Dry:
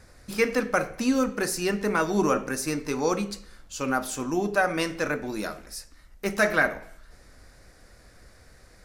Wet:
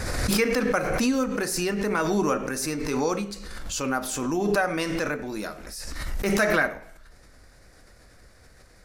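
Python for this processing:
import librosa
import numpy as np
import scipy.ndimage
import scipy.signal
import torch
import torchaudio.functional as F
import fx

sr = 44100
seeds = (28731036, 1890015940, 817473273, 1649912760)

y = fx.pre_swell(x, sr, db_per_s=27.0)
y = F.gain(torch.from_numpy(y), -1.5).numpy()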